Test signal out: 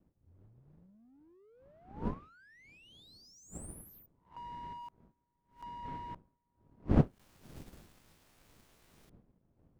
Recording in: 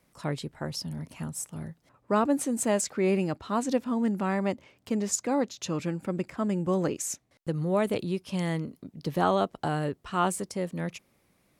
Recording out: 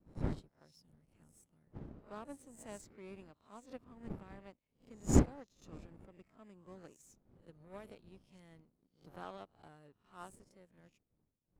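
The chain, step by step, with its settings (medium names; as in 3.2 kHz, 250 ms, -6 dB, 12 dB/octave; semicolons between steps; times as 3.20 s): reverse spectral sustain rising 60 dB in 0.42 s; wind noise 230 Hz -28 dBFS; power-law waveshaper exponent 1.4; upward expansion 1.5:1, over -38 dBFS; trim -8 dB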